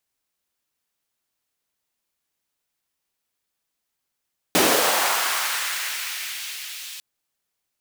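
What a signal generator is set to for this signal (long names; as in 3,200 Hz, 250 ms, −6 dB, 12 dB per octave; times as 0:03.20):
filter sweep on noise pink, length 2.45 s highpass, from 220 Hz, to 3,100 Hz, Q 1.4, linear, gain ramp −17.5 dB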